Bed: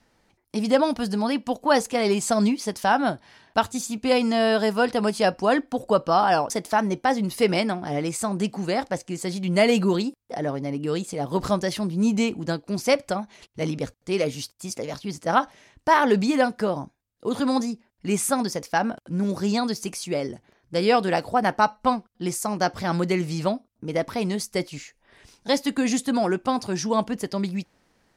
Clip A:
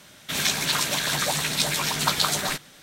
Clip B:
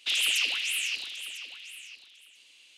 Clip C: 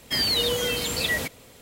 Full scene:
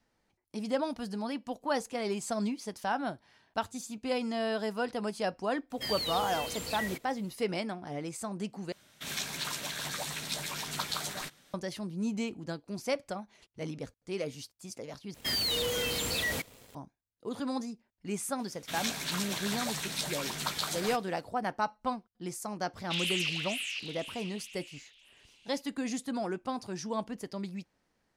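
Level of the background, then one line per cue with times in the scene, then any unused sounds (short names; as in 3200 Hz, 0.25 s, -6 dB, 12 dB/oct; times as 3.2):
bed -11.5 dB
5.7 add C -11.5 dB
8.72 replace with A -12 dB
15.14 replace with C -13.5 dB + sample leveller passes 3
18.39 add A -11 dB
22.84 add B -5 dB + high shelf 6800 Hz -7 dB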